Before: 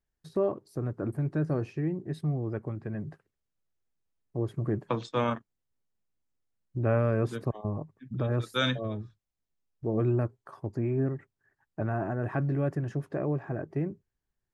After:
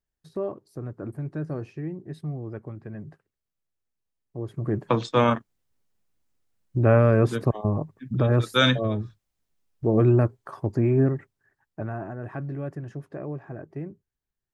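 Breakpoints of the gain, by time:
4.42 s -2.5 dB
4.95 s +8 dB
11.03 s +8 dB
12.12 s -4 dB

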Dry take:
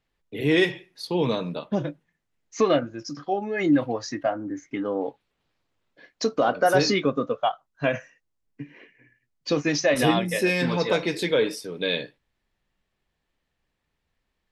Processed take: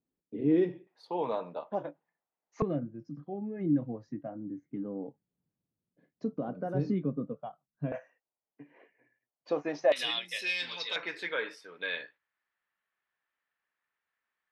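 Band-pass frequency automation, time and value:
band-pass, Q 2
260 Hz
from 0.87 s 800 Hz
from 2.62 s 170 Hz
from 7.92 s 720 Hz
from 9.92 s 3500 Hz
from 10.96 s 1500 Hz

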